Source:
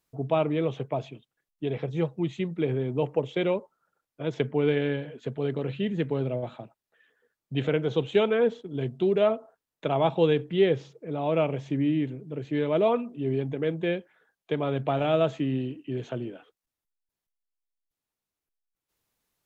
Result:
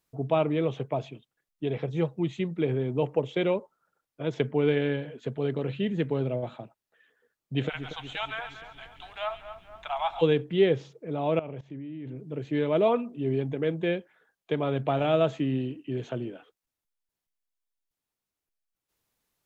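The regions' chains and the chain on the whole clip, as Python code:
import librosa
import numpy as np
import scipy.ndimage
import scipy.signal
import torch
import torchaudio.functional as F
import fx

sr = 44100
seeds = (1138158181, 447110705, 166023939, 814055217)

y = fx.cheby1_highpass(x, sr, hz=730.0, order=5, at=(7.68, 10.21), fade=0.02)
y = fx.dmg_noise_colour(y, sr, seeds[0], colour='brown', level_db=-55.0, at=(7.68, 10.21), fade=0.02)
y = fx.echo_split(y, sr, split_hz=2000.0, low_ms=236, high_ms=138, feedback_pct=52, wet_db=-10.5, at=(7.68, 10.21), fade=0.02)
y = fx.chain(y, sr, fx.lowpass(hz=2500.0, slope=6),
    fx.level_steps(step_db=19), at=(11.39, 12.16))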